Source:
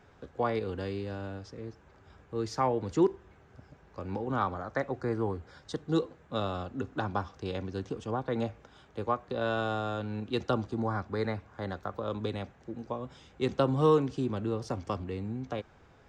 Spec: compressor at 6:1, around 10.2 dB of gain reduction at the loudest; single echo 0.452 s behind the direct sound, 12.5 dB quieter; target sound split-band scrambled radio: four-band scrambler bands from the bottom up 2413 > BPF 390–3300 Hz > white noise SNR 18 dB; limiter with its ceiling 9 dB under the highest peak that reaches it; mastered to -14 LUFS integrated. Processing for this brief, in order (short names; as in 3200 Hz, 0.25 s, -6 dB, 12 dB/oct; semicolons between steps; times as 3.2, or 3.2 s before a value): compressor 6:1, threshold -30 dBFS; limiter -27 dBFS; echo 0.452 s -12.5 dB; four-band scrambler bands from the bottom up 2413; BPF 390–3300 Hz; white noise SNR 18 dB; gain +24 dB